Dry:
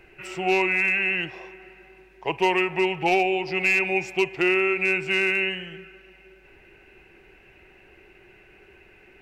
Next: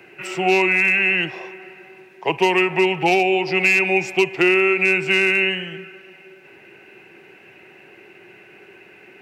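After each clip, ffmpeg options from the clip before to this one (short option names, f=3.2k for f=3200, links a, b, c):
-filter_complex "[0:a]highpass=f=130:w=0.5412,highpass=f=130:w=1.3066,acrossover=split=310|3000[a][b][c];[b]acompressor=threshold=-23dB:ratio=6[d];[a][d][c]amix=inputs=3:normalize=0,volume=7dB"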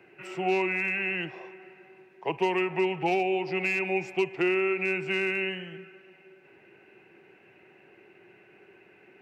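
-af "highshelf=f=2.6k:g=-9.5,volume=-8dB"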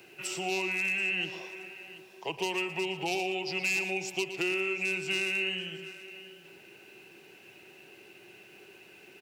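-af "acompressor=threshold=-44dB:ratio=1.5,aexciter=amount=6.7:drive=6.2:freq=3k,aecho=1:1:117|730:0.237|0.141"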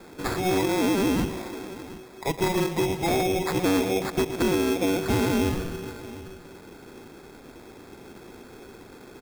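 -af "acrusher=samples=15:mix=1:aa=0.000001,asoftclip=type=hard:threshold=-23dB,volume=8dB"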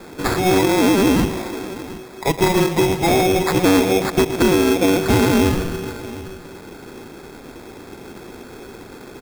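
-af "acrusher=bits=4:mode=log:mix=0:aa=0.000001,volume=8dB"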